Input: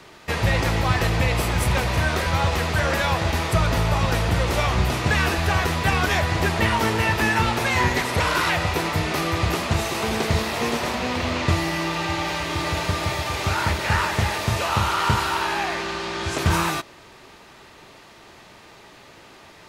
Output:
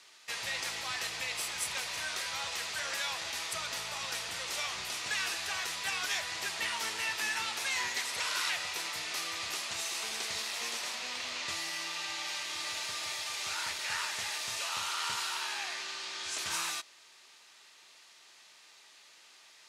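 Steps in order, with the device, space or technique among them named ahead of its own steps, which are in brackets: piezo pickup straight into a mixer (LPF 7800 Hz 12 dB/oct; differentiator)

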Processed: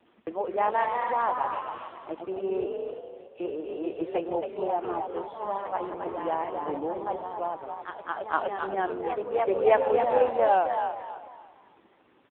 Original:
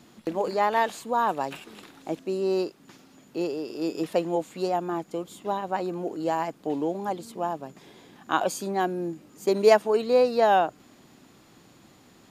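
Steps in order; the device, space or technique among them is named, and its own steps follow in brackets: 2.66–3.4 passive tone stack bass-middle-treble 10-0-10; 4.93–5.72 gate with hold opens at -49 dBFS; echoes that change speed 0.226 s, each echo +1 st, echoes 2, each echo -6 dB; frequency-shifting echo 0.27 s, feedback 30%, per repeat +58 Hz, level -6 dB; satellite phone (BPF 350–3200 Hz; echo 0.605 s -22 dB; gain -1.5 dB; AMR-NB 5.9 kbps 8000 Hz)

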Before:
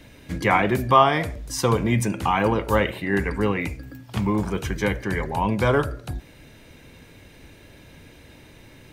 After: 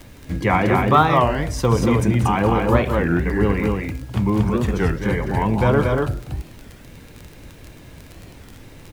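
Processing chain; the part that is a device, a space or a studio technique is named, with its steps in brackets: 2.81–3.29 LPF 2700 Hz; tilt -1.5 dB/oct; loudspeakers at several distances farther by 65 m -10 dB, 80 m -3 dB; warped LP (record warp 33 1/3 rpm, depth 250 cents; crackle 21/s -27 dBFS; pink noise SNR 31 dB)

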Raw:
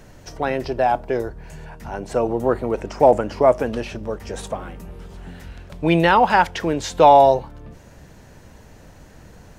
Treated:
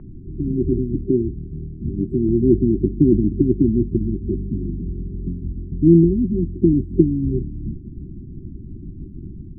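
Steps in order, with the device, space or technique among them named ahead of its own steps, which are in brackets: FFT band-reject 390–7800 Hz; 1.03–2.29 HPF 60 Hz 12 dB/oct; harmonic-percussive split percussive +9 dB; action camera in a waterproof case (LPF 1800 Hz 24 dB/oct; AGC gain up to 3 dB; gain +4 dB; AAC 96 kbps 24000 Hz)

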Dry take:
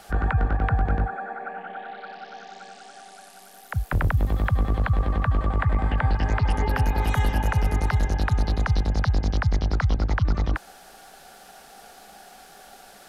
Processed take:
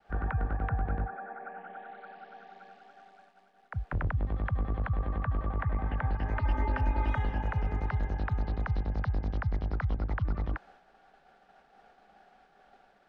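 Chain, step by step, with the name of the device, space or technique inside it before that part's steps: hearing-loss simulation (LPF 2300 Hz 12 dB/oct; expander -44 dBFS); 6.36–7.18 comb 3.3 ms, depth 74%; gain -8.5 dB

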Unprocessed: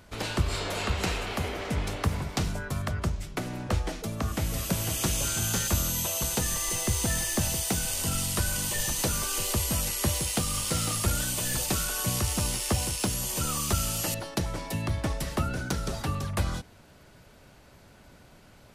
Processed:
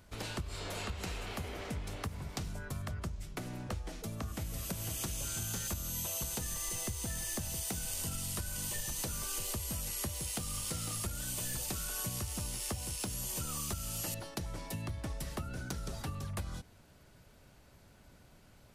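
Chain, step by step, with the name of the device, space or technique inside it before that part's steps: ASMR close-microphone chain (low shelf 160 Hz +5 dB; compressor, threshold -27 dBFS, peak gain reduction 11.5 dB; high shelf 6200 Hz +5 dB); gain -8.5 dB

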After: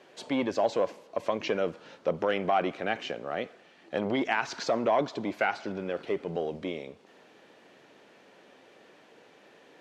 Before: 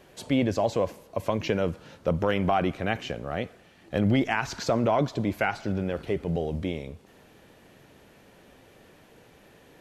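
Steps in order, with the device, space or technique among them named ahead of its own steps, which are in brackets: public-address speaker with an overloaded transformer (core saturation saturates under 380 Hz; BPF 290–5900 Hz)

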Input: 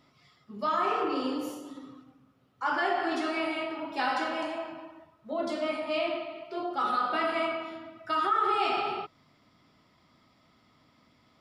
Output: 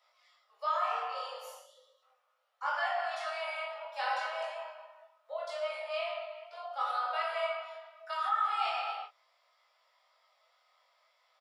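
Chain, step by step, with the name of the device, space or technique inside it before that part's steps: steep high-pass 510 Hz 96 dB/oct; spectral gain 1.64–2.03, 640–2800 Hz -15 dB; double-tracked vocal (doubler 26 ms -7 dB; chorus 0.42 Hz, delay 17.5 ms, depth 4.6 ms); gain -2 dB

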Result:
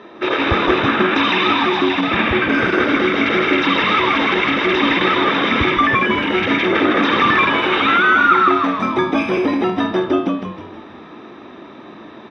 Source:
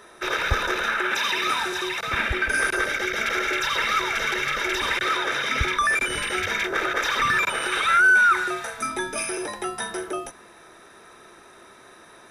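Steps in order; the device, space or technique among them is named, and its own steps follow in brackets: 5.71–6.35 bell 4300 Hz -4.5 dB 1.8 oct; frequency-shifting delay pedal into a guitar cabinet (frequency-shifting echo 0.158 s, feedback 48%, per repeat -91 Hz, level -4 dB; speaker cabinet 100–3400 Hz, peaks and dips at 220 Hz +8 dB, 310 Hz +9 dB, 1500 Hz -9 dB, 2100 Hz -3 dB); gain +9 dB

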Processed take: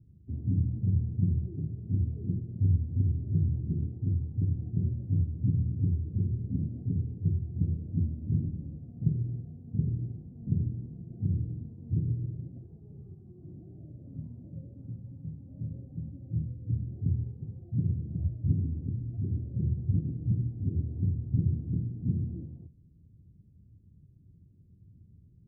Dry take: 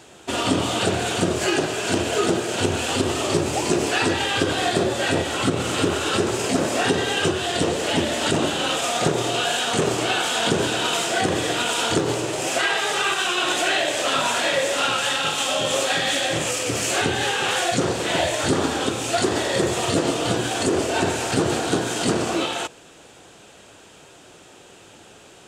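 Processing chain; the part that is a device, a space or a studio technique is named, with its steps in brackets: the neighbour's flat through the wall (LPF 170 Hz 24 dB/oct; bell 81 Hz +7.5 dB 0.92 oct)

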